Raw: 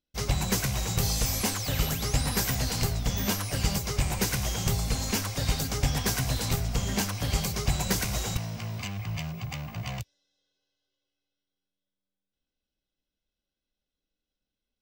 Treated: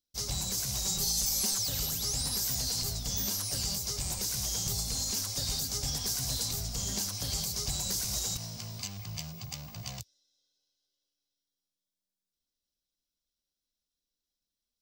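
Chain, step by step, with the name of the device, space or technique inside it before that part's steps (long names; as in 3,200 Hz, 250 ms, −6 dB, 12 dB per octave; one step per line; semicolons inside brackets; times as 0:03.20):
over-bright horn tweeter (high shelf with overshoot 3,400 Hz +11 dB, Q 1.5; brickwall limiter −14 dBFS, peak gain reduction 10.5 dB)
0:00.84–0:01.59: comb filter 5.2 ms, depth 75%
level −8 dB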